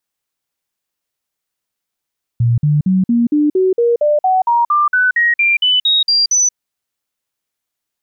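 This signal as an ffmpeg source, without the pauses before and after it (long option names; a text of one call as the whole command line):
ffmpeg -f lavfi -i "aevalsrc='0.335*clip(min(mod(t,0.23),0.18-mod(t,0.23))/0.005,0,1)*sin(2*PI*118*pow(2,floor(t/0.23)/3)*mod(t,0.23))':duration=4.14:sample_rate=44100" out.wav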